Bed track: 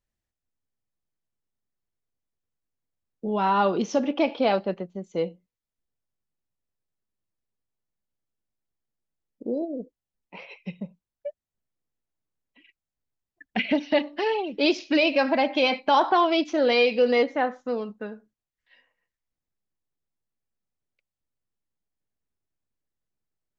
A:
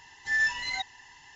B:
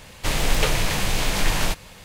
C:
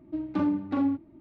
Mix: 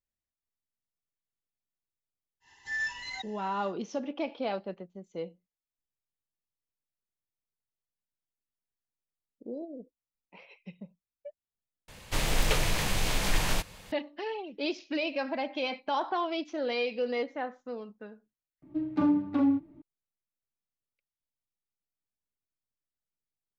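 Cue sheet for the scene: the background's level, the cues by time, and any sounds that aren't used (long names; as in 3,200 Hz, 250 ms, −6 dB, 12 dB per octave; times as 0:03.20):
bed track −10.5 dB
0:02.40: mix in A −7 dB, fades 0.10 s
0:11.88: overwrite with B −6 dB
0:18.62: overwrite with C −2.5 dB + comb filter 6.9 ms, depth 55%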